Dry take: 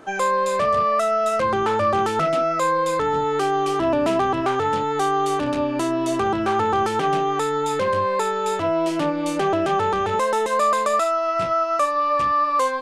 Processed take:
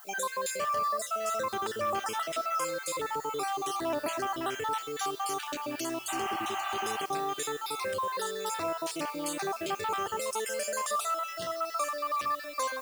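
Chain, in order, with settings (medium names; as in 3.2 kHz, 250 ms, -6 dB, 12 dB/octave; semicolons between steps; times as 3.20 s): random holes in the spectrogram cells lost 41%; RIAA curve recording; spectral replace 6.11–6.97 s, 600–3100 Hz after; bass shelf 160 Hz +7 dB; in parallel at +1 dB: peak limiter -19 dBFS, peak gain reduction 9.5 dB; on the sum: added noise violet -39 dBFS; feedback comb 120 Hz, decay 1.3 s, harmonics all, mix 60%; short-mantissa float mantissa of 4-bit; on a send: thinning echo 641 ms, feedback 70%, high-pass 610 Hz, level -22.5 dB; on the sum: trim -6.5 dB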